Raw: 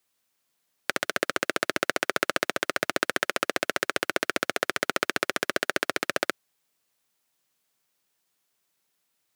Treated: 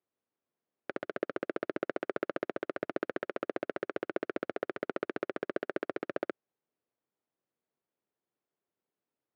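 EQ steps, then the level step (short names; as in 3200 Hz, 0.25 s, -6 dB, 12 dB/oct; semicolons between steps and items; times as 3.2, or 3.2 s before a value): tape spacing loss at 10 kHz 42 dB; bell 390 Hz +8 dB 1.7 oct; -8.5 dB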